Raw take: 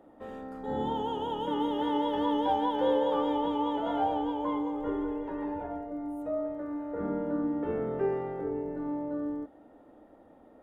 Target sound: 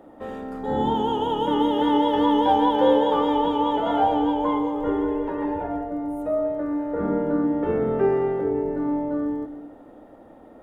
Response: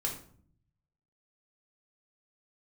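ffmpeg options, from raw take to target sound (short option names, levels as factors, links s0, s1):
-filter_complex "[0:a]asplit=2[s0][s1];[1:a]atrim=start_sample=2205,adelay=127[s2];[s1][s2]afir=irnorm=-1:irlink=0,volume=0.188[s3];[s0][s3]amix=inputs=2:normalize=0,volume=2.66"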